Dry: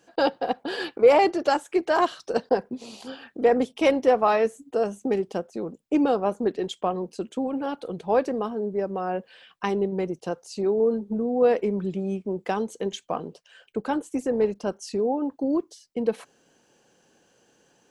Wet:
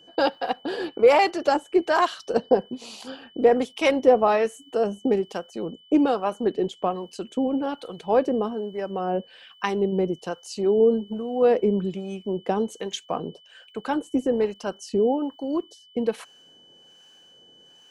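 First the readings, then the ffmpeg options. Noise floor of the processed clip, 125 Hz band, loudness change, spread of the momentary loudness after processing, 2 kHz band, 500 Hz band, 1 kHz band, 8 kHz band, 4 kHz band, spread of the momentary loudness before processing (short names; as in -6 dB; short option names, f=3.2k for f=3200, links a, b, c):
-54 dBFS, +1.0 dB, +1.5 dB, 13 LU, +1.5 dB, +1.0 dB, +1.0 dB, n/a, +2.5 dB, 12 LU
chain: -filter_complex "[0:a]acrossover=split=780[a][b];[a]aeval=exprs='val(0)*(1-0.7/2+0.7/2*cos(2*PI*1.2*n/s))':c=same[c];[b]aeval=exprs='val(0)*(1-0.7/2-0.7/2*cos(2*PI*1.2*n/s))':c=same[d];[c][d]amix=inputs=2:normalize=0,aeval=exprs='val(0)+0.00158*sin(2*PI*3000*n/s)':c=same,volume=4.5dB"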